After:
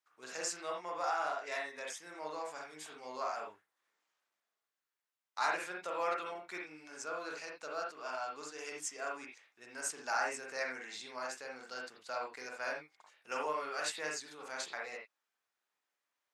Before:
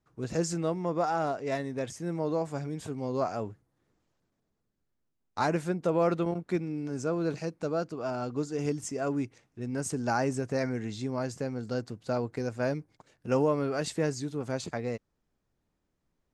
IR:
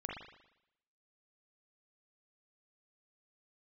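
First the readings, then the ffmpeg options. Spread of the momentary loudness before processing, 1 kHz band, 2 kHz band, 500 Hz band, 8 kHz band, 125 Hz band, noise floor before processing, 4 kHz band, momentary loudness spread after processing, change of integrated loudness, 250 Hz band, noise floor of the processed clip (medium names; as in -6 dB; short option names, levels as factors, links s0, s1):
8 LU, -3.5 dB, +1.5 dB, -11.5 dB, -1.0 dB, -34.0 dB, -80 dBFS, -0.5 dB, 12 LU, -8.0 dB, -22.5 dB, under -85 dBFS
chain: -filter_complex "[0:a]highpass=1200[s0];[1:a]atrim=start_sample=2205,atrim=end_sample=4410[s1];[s0][s1]afir=irnorm=-1:irlink=0,volume=1.41"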